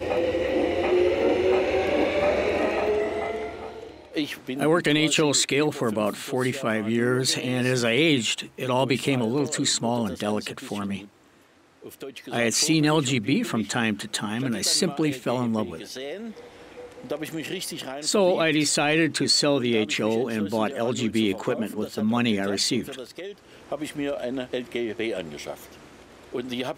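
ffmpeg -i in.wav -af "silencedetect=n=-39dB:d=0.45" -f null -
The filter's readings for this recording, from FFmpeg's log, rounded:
silence_start: 11.06
silence_end: 11.83 | silence_duration: 0.77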